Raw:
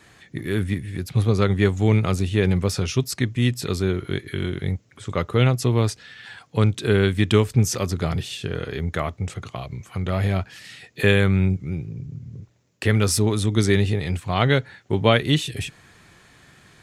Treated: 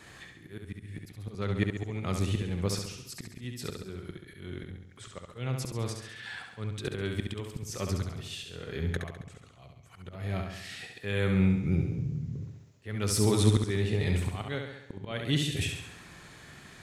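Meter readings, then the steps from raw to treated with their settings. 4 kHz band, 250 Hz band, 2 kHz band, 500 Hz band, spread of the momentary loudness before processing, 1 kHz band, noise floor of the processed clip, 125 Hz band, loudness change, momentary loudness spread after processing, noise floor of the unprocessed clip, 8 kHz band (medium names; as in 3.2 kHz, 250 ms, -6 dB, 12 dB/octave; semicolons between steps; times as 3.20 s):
-9.0 dB, -9.0 dB, -11.5 dB, -12.0 dB, 15 LU, -13.5 dB, -54 dBFS, -10.0 dB, -10.0 dB, 20 LU, -55 dBFS, -7.5 dB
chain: slow attack 779 ms; on a send: flutter echo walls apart 11.7 m, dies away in 0.79 s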